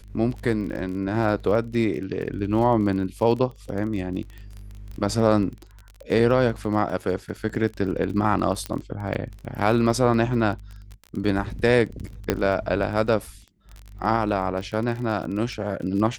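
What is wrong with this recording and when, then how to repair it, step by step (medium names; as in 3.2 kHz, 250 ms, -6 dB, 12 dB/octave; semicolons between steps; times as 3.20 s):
crackle 26 per s -31 dBFS
8.66 s: pop -13 dBFS
12.30 s: pop -6 dBFS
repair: de-click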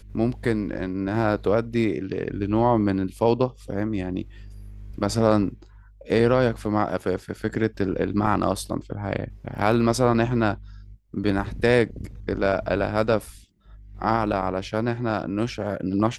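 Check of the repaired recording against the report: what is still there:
nothing left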